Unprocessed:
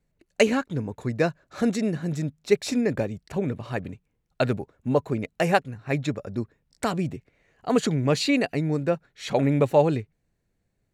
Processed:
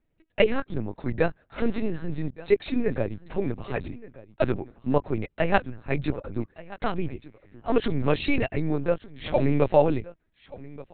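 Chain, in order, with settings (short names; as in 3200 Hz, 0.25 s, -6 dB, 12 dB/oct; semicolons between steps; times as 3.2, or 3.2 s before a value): echo 1.177 s -19 dB; LPC vocoder at 8 kHz pitch kept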